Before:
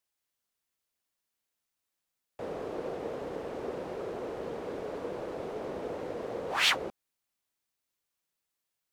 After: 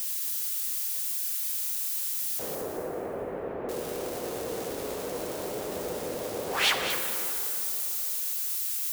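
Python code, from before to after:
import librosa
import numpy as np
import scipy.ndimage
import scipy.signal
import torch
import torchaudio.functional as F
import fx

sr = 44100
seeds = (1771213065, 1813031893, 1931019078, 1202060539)

y = x + 0.5 * 10.0 ** (-28.0 / 20.0) * np.diff(np.sign(x), prepend=np.sign(x[:1]))
y = fx.lowpass(y, sr, hz=2000.0, slope=24, at=(2.55, 3.69))
y = fx.echo_alternate(y, sr, ms=111, hz=830.0, feedback_pct=53, wet_db=-4)
y = fx.rev_plate(y, sr, seeds[0], rt60_s=3.5, hf_ratio=0.5, predelay_ms=0, drr_db=5.0)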